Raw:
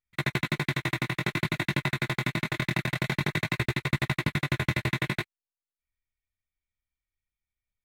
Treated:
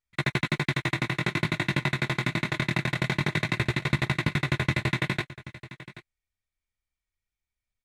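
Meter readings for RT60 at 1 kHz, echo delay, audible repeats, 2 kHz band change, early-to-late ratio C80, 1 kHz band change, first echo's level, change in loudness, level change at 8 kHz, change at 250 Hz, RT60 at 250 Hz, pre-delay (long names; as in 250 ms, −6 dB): no reverb audible, 781 ms, 1, +1.5 dB, no reverb audible, +1.5 dB, −16.5 dB, +1.5 dB, 0.0 dB, +1.5 dB, no reverb audible, no reverb audible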